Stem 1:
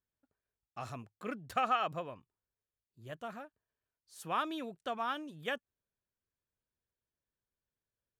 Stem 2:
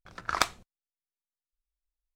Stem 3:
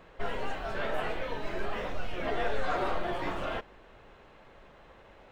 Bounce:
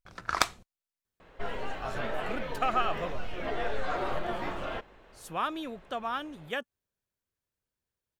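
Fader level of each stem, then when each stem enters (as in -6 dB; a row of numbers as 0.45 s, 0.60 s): +2.5 dB, 0.0 dB, -1.5 dB; 1.05 s, 0.00 s, 1.20 s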